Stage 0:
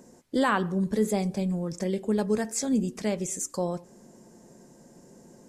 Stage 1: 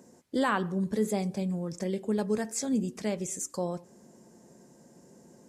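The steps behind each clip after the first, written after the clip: HPF 61 Hz; gain -3 dB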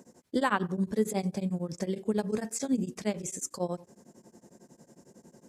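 beating tremolo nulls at 11 Hz; gain +2.5 dB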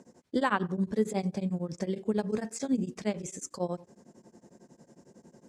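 air absorption 52 m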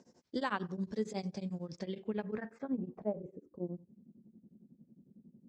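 low-pass sweep 5400 Hz -> 220 Hz, 1.63–3.89; gain -8 dB

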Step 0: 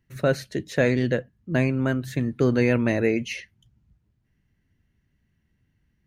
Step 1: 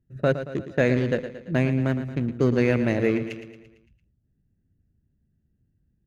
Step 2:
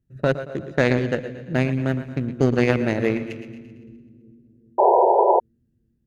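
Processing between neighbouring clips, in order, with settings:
Wiener smoothing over 41 samples; on a send: feedback echo 0.113 s, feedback 53%, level -11 dB
split-band echo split 300 Hz, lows 0.394 s, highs 0.128 s, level -12.5 dB; added harmonics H 3 -15 dB, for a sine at -7.5 dBFS; painted sound noise, 4.78–5.4, 350–1000 Hz -21 dBFS; gain +5.5 dB

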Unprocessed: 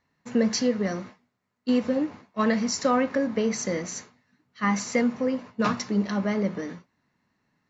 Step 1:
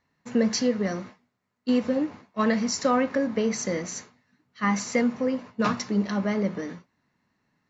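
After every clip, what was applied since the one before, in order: nothing audible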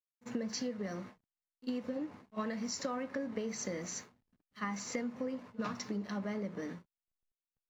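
compressor, threshold -29 dBFS, peak gain reduction 11 dB; pre-echo 47 ms -18.5 dB; backlash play -56 dBFS; gain -5.5 dB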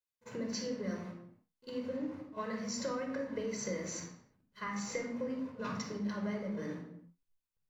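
flange 0.96 Hz, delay 2.4 ms, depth 3.8 ms, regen -83%; reverb, pre-delay 22 ms, DRR 3 dB; gain +1 dB

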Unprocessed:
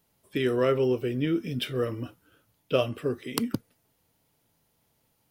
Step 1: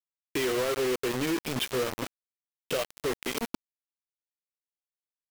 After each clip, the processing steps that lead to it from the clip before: tone controls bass -13 dB, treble -2 dB; compressor 4:1, threshold -35 dBFS, peak gain reduction 13 dB; companded quantiser 2-bit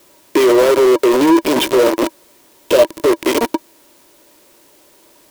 resonant high-pass 330 Hz, resonance Q 3.9; power-law curve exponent 0.5; small resonant body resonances 590/950 Hz, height 12 dB, ringing for 60 ms; gain +5 dB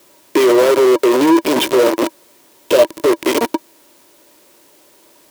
HPF 97 Hz 6 dB/oct

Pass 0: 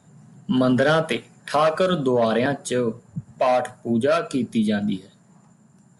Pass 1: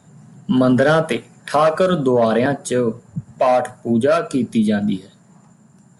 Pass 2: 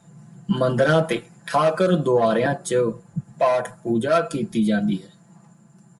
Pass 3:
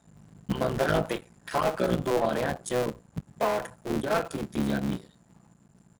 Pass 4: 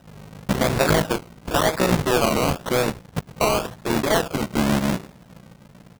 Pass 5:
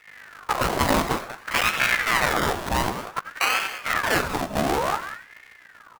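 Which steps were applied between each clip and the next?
dynamic EQ 3300 Hz, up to -5 dB, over -39 dBFS, Q 0.83; gain +4.5 dB
comb 5.9 ms, depth 82%; gain -5 dB
cycle switcher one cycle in 3, muted; gain -6 dB
half-waves squared off; in parallel at +2 dB: compressor, threshold -30 dBFS, peak gain reduction 12.5 dB; on the sum: decimation with a swept rate 20×, swing 60% 0.95 Hz
echo 0.19 s -11.5 dB; reverb RT60 0.30 s, pre-delay 80 ms, DRR 12 dB; ring modulator with a swept carrier 1200 Hz, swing 65%, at 0.55 Hz

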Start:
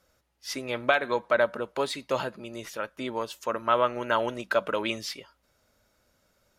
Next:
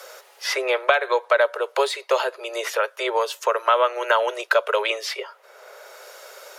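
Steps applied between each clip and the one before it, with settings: steep high-pass 390 Hz 96 dB/oct; three-band squash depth 70%; gain +7 dB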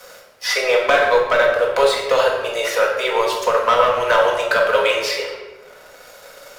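sample leveller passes 2; shoebox room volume 670 m³, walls mixed, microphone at 1.9 m; gain -5.5 dB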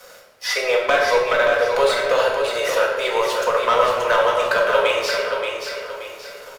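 feedback echo 0.578 s, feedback 37%, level -6 dB; gain -2.5 dB

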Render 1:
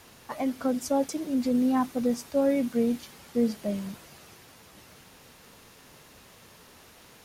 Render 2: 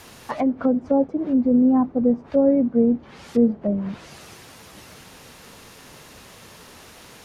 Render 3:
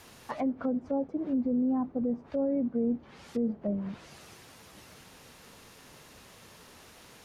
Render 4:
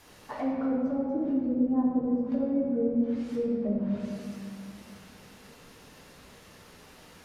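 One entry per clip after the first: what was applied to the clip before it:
treble ducked by the level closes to 640 Hz, closed at -26 dBFS; gain +8 dB
limiter -14 dBFS, peak gain reduction 6 dB; gain -8 dB
reverb RT60 2.1 s, pre-delay 7 ms, DRR -4 dB; gain -4.5 dB

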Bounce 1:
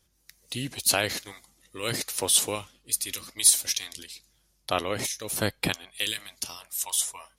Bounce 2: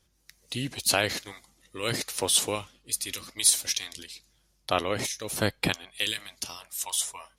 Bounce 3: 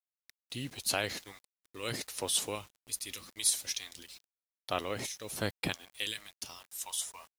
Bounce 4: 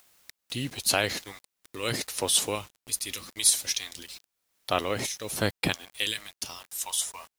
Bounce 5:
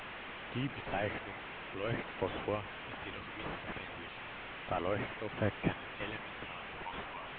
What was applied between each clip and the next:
high shelf 9600 Hz -8 dB; gain +1 dB
requantised 8-bit, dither none; gain -7.5 dB
upward compressor, threshold -46 dBFS; gain +7 dB
delta modulation 16 kbps, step -35 dBFS; gain -3.5 dB

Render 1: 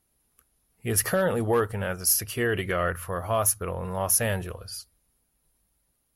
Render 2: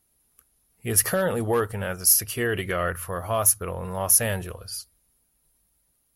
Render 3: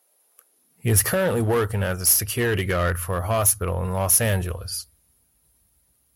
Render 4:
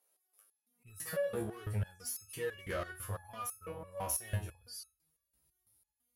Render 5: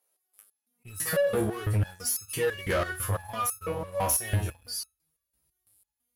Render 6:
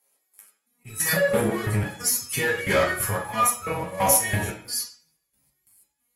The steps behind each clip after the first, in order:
high shelf 5300 Hz +5.5 dB
in parallel at -4.5 dB: wavefolder -23 dBFS; on the sum: high-pass sweep 550 Hz -> 67 Hz, 0.42–1.04
compressor, threshold -21 dBFS, peak gain reduction 8.5 dB; stepped resonator 6 Hz 69–1300 Hz; gain -3 dB
sample leveller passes 2; gain +5 dB
reverb RT60 0.45 s, pre-delay 3 ms, DRR -1.5 dB; gain +4.5 dB; AAC 48 kbps 48000 Hz

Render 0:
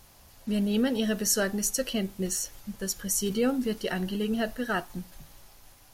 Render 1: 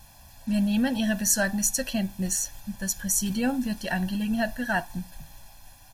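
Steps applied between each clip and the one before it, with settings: comb 1.2 ms, depth 97%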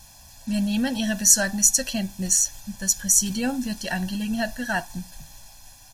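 bell 6400 Hz +9 dB 1.4 oct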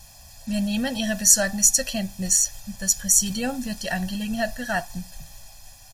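comb 1.6 ms, depth 41%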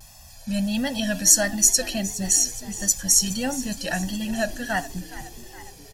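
vibrato 1.5 Hz 64 cents; frequency-shifting echo 0.417 s, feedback 61%, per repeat +54 Hz, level -16 dB

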